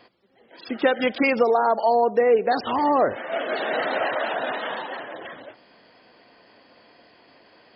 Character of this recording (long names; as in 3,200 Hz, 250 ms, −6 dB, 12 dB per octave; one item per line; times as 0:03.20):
background noise floor −56 dBFS
spectral slope −1.5 dB per octave